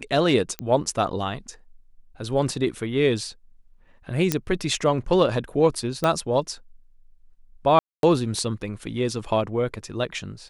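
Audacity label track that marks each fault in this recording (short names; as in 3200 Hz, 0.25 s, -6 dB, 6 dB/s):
0.590000	0.590000	pop -14 dBFS
4.320000	4.320000	pop -5 dBFS
6.040000	6.040000	pop -10 dBFS
7.790000	8.030000	gap 0.242 s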